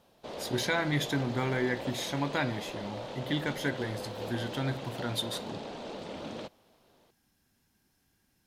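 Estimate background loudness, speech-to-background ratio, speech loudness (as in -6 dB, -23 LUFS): -40.5 LUFS, 7.0 dB, -33.5 LUFS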